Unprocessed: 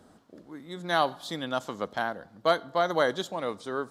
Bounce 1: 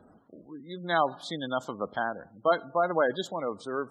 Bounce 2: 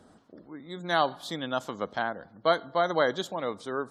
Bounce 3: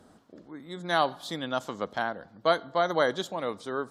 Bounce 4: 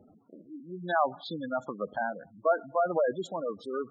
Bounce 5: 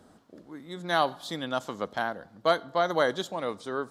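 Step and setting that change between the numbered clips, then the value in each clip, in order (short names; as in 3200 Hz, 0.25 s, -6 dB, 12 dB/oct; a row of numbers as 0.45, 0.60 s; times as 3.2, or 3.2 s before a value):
spectral gate, under each frame's peak: -20, -35, -45, -10, -60 dB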